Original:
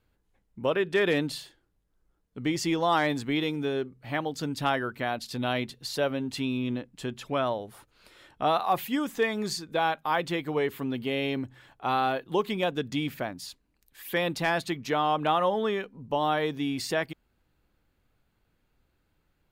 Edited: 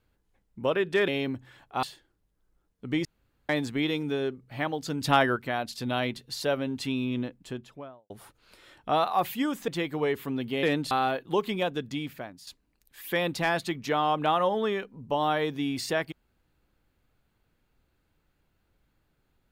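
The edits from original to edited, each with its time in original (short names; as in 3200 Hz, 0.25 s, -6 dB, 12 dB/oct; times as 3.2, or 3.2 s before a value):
1.08–1.36 swap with 11.17–11.92
2.58–3.02 room tone
4.54–4.89 gain +5 dB
6.78–7.63 studio fade out
9.21–10.22 cut
12.53–13.48 fade out, to -10.5 dB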